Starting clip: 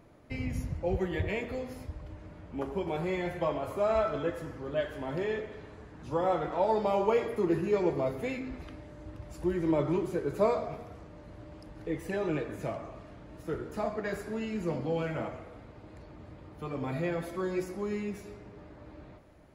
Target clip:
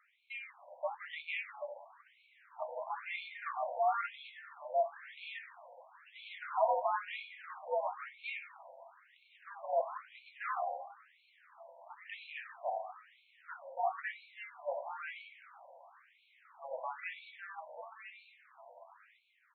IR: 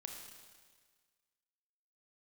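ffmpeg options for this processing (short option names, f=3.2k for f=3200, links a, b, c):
-af "lowshelf=f=91:g=-11.5,aresample=16000,aeval=exprs='clip(val(0),-1,0.0282)':c=same,aresample=44100,flanger=delay=9.4:depth=8.2:regen=49:speed=0.16:shape=triangular,afreqshift=77,afftfilt=real='re*between(b*sr/1024,690*pow(3100/690,0.5+0.5*sin(2*PI*1*pts/sr))/1.41,690*pow(3100/690,0.5+0.5*sin(2*PI*1*pts/sr))*1.41)':imag='im*between(b*sr/1024,690*pow(3100/690,0.5+0.5*sin(2*PI*1*pts/sr))/1.41,690*pow(3100/690,0.5+0.5*sin(2*PI*1*pts/sr))*1.41)':win_size=1024:overlap=0.75,volume=5.5dB"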